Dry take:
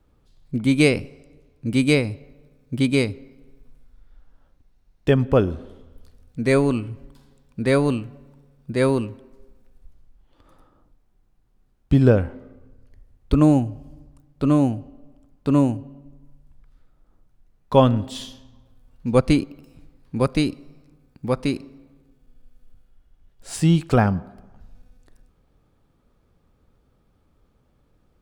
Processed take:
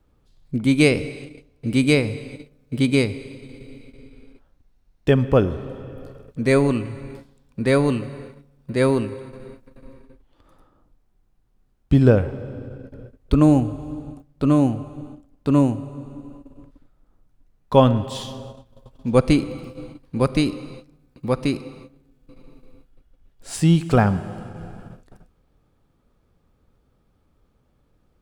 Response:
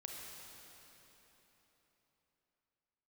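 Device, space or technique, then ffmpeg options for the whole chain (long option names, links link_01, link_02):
keyed gated reverb: -filter_complex "[0:a]asplit=3[link_01][link_02][link_03];[1:a]atrim=start_sample=2205[link_04];[link_02][link_04]afir=irnorm=-1:irlink=0[link_05];[link_03]apad=whole_len=1244067[link_06];[link_05][link_06]sidechaingate=range=-33dB:threshold=-48dB:ratio=16:detection=peak,volume=-7dB[link_07];[link_01][link_07]amix=inputs=2:normalize=0,volume=-1dB"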